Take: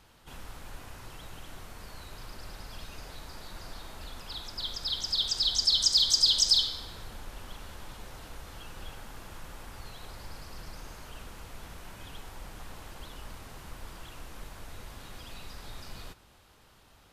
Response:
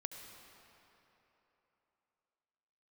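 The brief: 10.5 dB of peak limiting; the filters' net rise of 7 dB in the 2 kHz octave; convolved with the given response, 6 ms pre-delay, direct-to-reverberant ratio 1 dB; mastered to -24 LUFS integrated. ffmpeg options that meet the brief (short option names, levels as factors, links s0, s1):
-filter_complex "[0:a]equalizer=f=2000:t=o:g=9,alimiter=limit=0.106:level=0:latency=1,asplit=2[s0][s1];[1:a]atrim=start_sample=2205,adelay=6[s2];[s1][s2]afir=irnorm=-1:irlink=0,volume=1.12[s3];[s0][s3]amix=inputs=2:normalize=0,volume=2.51"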